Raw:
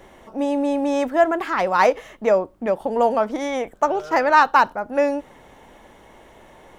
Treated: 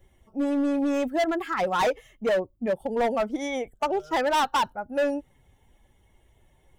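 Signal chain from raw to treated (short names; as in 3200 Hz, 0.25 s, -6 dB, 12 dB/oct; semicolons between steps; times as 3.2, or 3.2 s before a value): per-bin expansion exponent 1.5; overloaded stage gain 20 dB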